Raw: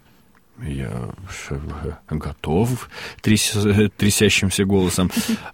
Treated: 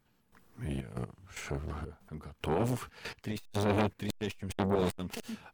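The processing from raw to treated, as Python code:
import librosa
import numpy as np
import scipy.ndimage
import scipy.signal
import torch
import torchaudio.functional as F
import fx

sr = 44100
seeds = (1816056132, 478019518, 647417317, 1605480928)

y = fx.tracing_dist(x, sr, depth_ms=0.097)
y = fx.step_gate(y, sr, bpm=187, pattern='....xxxxxx..x', floor_db=-12.0, edge_ms=4.5)
y = fx.transformer_sat(y, sr, knee_hz=920.0)
y = y * librosa.db_to_amplitude(-6.5)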